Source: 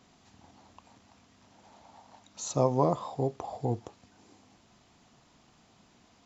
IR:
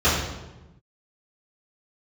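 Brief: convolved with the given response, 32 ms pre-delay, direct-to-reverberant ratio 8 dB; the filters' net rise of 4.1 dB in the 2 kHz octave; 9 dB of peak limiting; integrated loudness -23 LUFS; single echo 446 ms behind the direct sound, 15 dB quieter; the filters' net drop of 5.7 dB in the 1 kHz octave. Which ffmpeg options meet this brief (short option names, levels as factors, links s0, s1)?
-filter_complex "[0:a]equalizer=f=1000:t=o:g=-9,equalizer=f=2000:t=o:g=7.5,alimiter=limit=0.0794:level=0:latency=1,aecho=1:1:446:0.178,asplit=2[s0][s1];[1:a]atrim=start_sample=2205,adelay=32[s2];[s1][s2]afir=irnorm=-1:irlink=0,volume=0.0398[s3];[s0][s3]amix=inputs=2:normalize=0,volume=3.98"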